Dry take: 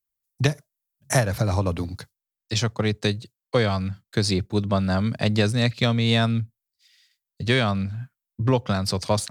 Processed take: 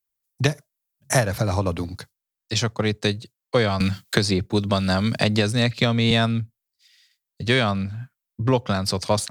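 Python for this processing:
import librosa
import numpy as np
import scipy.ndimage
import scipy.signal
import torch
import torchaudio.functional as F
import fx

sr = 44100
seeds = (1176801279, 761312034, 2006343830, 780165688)

y = fx.low_shelf(x, sr, hz=160.0, db=-4.0)
y = fx.band_squash(y, sr, depth_pct=100, at=(3.8, 6.11))
y = y * 10.0 ** (2.0 / 20.0)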